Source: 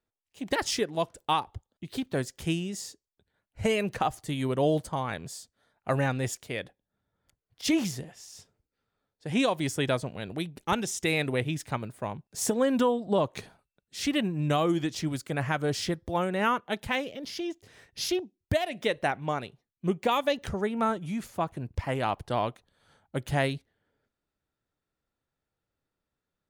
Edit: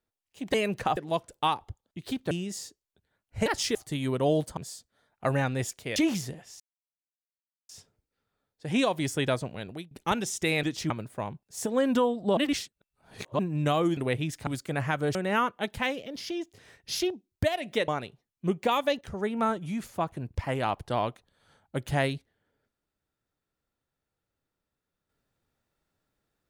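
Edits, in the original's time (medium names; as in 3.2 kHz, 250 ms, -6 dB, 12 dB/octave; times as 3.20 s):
0.54–0.83 s: swap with 3.69–4.12 s
2.17–2.54 s: delete
4.94–5.21 s: delete
6.60–7.66 s: delete
8.30 s: insert silence 1.09 s
10.08–10.52 s: fade out equal-power, to -23 dB
11.24–11.74 s: swap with 14.81–15.08 s
12.32–12.64 s: fade in linear, from -15 dB
13.21–14.23 s: reverse
15.76–16.24 s: delete
18.97–19.28 s: delete
20.41–20.68 s: fade in, from -13 dB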